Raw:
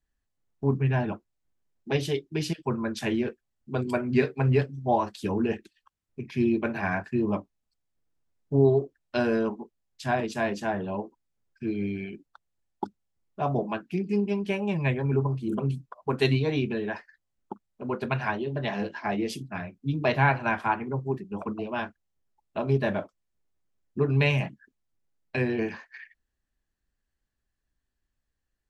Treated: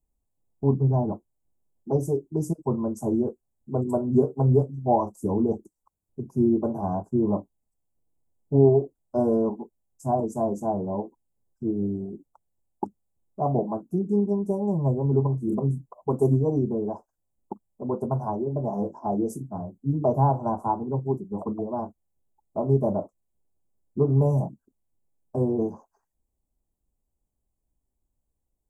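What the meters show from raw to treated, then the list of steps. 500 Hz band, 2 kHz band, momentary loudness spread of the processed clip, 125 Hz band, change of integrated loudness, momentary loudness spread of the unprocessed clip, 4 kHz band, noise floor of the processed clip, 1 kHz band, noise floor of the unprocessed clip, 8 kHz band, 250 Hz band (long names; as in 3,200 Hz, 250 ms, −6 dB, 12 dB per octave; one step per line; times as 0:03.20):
+3.0 dB, below −30 dB, 14 LU, +3.0 dB, +2.5 dB, 15 LU, below −25 dB, −81 dBFS, +1.5 dB, −82 dBFS, can't be measured, +3.0 dB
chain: inverse Chebyshev band-stop filter 1,700–4,200 Hz, stop band 50 dB
level +3 dB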